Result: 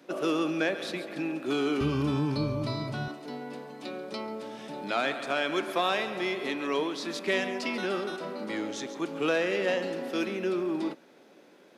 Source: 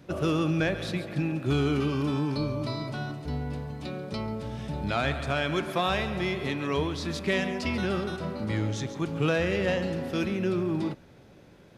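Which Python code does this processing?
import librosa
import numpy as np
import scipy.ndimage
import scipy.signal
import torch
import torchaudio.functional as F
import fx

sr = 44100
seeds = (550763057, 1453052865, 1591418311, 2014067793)

y = fx.highpass(x, sr, hz=fx.steps((0.0, 250.0), (1.81, 55.0), (3.08, 250.0)), slope=24)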